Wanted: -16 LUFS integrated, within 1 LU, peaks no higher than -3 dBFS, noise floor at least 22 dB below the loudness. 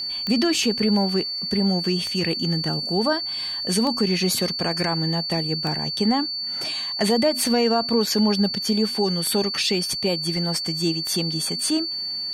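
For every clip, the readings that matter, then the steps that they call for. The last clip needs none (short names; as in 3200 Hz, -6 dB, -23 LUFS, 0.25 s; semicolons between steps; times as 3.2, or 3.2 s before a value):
clicks 7; steady tone 4500 Hz; tone level -26 dBFS; loudness -22.0 LUFS; peak -7.5 dBFS; loudness target -16.0 LUFS
-> de-click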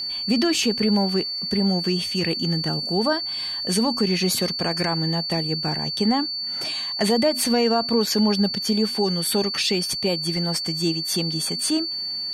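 clicks 0; steady tone 4500 Hz; tone level -26 dBFS
-> notch 4500 Hz, Q 30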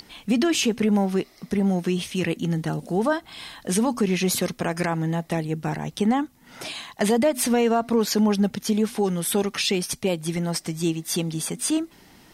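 steady tone none; loudness -24.0 LUFS; peak -11.5 dBFS; loudness target -16.0 LUFS
-> gain +8 dB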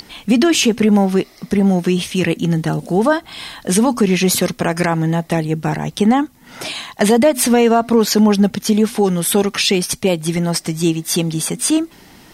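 loudness -16.0 LUFS; peak -3.5 dBFS; noise floor -45 dBFS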